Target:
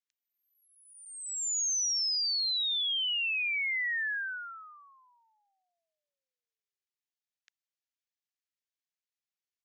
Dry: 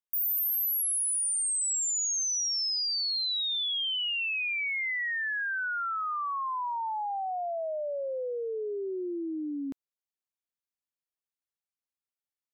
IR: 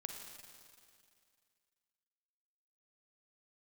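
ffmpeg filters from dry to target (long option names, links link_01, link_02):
-af "atempo=1.3,asuperpass=centerf=3500:order=12:qfactor=0.62"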